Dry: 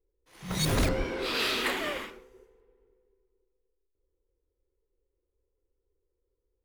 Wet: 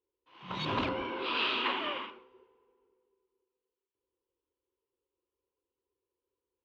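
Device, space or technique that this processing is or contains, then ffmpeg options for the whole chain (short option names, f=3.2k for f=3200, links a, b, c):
kitchen radio: -af "highpass=160,equalizer=f=170:t=q:w=4:g=-8,equalizer=f=460:t=q:w=4:g=-5,equalizer=f=680:t=q:w=4:g=-4,equalizer=f=1k:t=q:w=4:g=10,equalizer=f=1.9k:t=q:w=4:g=-7,equalizer=f=2.9k:t=q:w=4:g=7,lowpass=f=3.5k:w=0.5412,lowpass=f=3.5k:w=1.3066,volume=-2.5dB"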